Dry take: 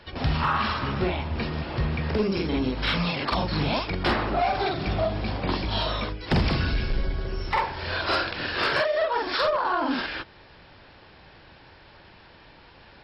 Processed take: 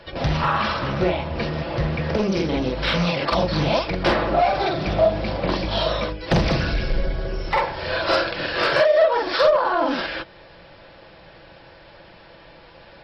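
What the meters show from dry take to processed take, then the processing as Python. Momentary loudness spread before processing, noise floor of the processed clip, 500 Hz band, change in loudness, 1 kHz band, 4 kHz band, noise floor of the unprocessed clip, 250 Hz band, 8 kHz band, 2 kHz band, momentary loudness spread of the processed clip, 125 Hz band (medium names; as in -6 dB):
6 LU, -47 dBFS, +8.0 dB, +4.5 dB, +4.0 dB, +3.0 dB, -51 dBFS, +3.5 dB, no reading, +3.0 dB, 9 LU, +2.5 dB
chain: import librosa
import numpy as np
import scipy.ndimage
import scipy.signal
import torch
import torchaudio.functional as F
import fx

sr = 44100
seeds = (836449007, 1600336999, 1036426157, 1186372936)

y = fx.peak_eq(x, sr, hz=570.0, db=10.0, octaves=0.37)
y = y + 0.37 * np.pad(y, (int(6.0 * sr / 1000.0), 0))[:len(y)]
y = fx.doppler_dist(y, sr, depth_ms=0.25)
y = y * 10.0 ** (2.5 / 20.0)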